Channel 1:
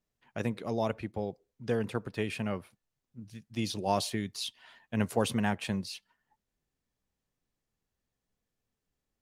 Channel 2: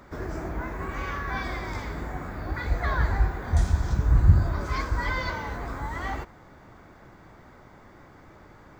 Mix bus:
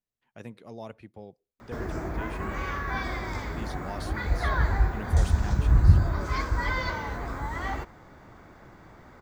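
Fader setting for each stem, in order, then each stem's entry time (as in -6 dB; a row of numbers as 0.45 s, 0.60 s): -10.0 dB, 0.0 dB; 0.00 s, 1.60 s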